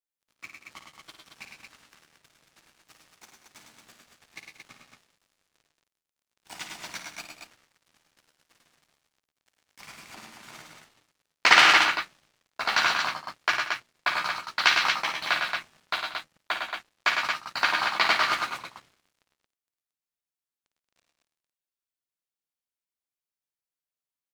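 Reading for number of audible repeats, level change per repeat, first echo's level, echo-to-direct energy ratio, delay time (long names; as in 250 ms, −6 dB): 4, repeats not evenly spaced, −8.5 dB, −0.5 dB, 55 ms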